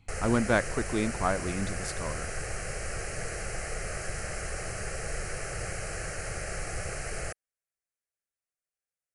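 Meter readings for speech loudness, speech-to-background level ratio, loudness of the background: -30.5 LUFS, 5.5 dB, -36.0 LUFS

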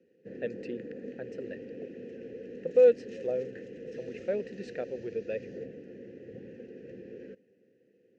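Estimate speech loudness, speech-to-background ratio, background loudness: -30.0 LUFS, 14.5 dB, -44.5 LUFS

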